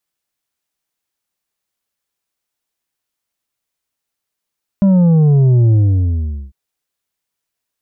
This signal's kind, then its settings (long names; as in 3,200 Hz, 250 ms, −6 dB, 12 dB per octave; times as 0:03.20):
bass drop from 200 Hz, over 1.70 s, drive 6 dB, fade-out 0.79 s, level −8 dB